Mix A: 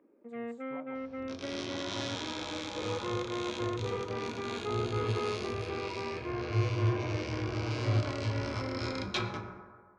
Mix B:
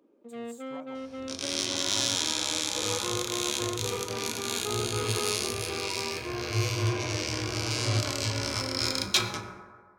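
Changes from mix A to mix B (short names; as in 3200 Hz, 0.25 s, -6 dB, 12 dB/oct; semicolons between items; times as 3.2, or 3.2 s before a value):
first sound: remove synth low-pass 2100 Hz, resonance Q 2.9; master: remove tape spacing loss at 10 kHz 30 dB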